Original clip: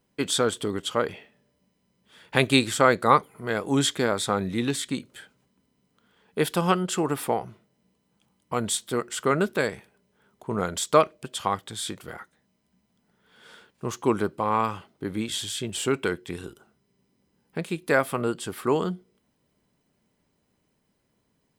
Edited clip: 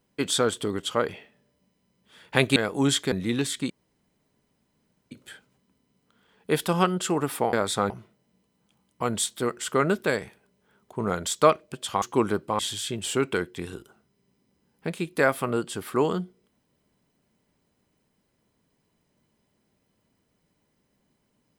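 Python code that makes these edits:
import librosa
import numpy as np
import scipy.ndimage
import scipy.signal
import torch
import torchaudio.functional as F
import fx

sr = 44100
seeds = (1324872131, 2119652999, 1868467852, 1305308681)

y = fx.edit(x, sr, fx.cut(start_s=2.56, length_s=0.92),
    fx.move(start_s=4.04, length_s=0.37, to_s=7.41),
    fx.insert_room_tone(at_s=4.99, length_s=1.41),
    fx.cut(start_s=11.53, length_s=2.39),
    fx.cut(start_s=14.49, length_s=0.81), tone=tone)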